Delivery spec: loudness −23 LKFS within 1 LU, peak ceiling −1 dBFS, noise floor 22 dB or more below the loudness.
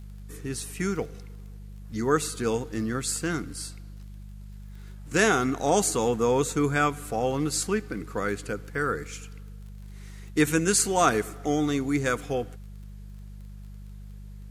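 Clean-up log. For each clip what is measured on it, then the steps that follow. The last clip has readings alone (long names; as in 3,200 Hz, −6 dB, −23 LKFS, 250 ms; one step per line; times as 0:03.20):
crackle rate 22 per second; mains hum 50 Hz; hum harmonics up to 200 Hz; level of the hum −40 dBFS; integrated loudness −26.5 LKFS; sample peak −8.5 dBFS; target loudness −23.0 LKFS
→ click removal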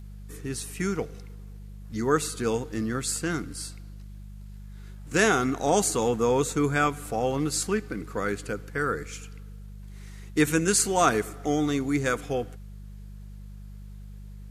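crackle rate 0.069 per second; mains hum 50 Hz; hum harmonics up to 150 Hz; level of the hum −40 dBFS
→ hum removal 50 Hz, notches 3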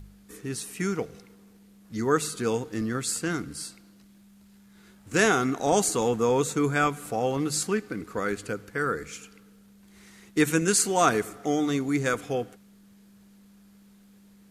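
mains hum none found; integrated loudness −26.5 LKFS; sample peak −8.5 dBFS; target loudness −23.0 LKFS
→ level +3.5 dB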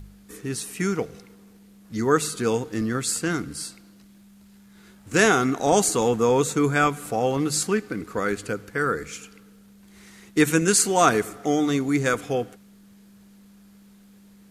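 integrated loudness −23.0 LKFS; sample peak −5.0 dBFS; background noise floor −52 dBFS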